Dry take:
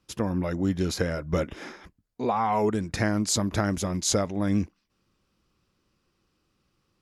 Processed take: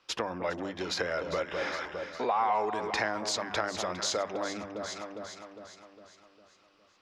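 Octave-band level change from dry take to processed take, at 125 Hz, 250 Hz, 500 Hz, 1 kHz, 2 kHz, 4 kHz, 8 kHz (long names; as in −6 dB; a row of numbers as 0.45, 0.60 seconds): −18.5, −13.0, −3.0, −0.5, +1.5, −0.5, −7.5 decibels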